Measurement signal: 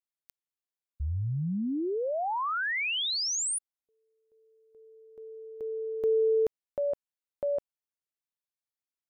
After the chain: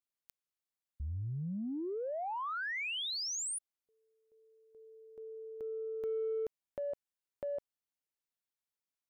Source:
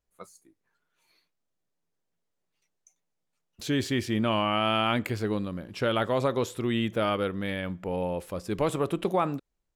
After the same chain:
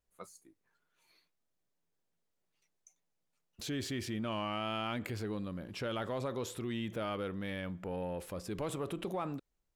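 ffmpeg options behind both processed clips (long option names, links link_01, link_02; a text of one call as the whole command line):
ffmpeg -i in.wav -filter_complex "[0:a]asplit=2[link_01][link_02];[link_02]asoftclip=type=tanh:threshold=-29dB,volume=-11dB[link_03];[link_01][link_03]amix=inputs=2:normalize=0,acompressor=threshold=-37dB:ratio=2:attack=4.9:release=27:knee=6:detection=rms,volume=-4dB" out.wav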